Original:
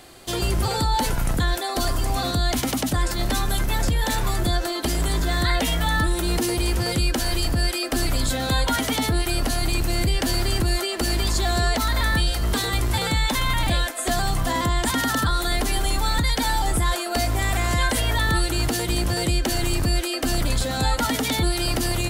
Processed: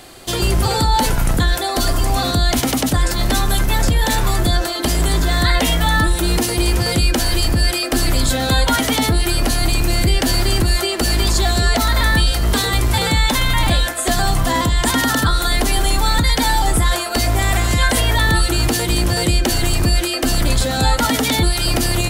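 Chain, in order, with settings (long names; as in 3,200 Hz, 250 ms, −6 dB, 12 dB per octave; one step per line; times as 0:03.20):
hum removal 69.74 Hz, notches 35
level +6.5 dB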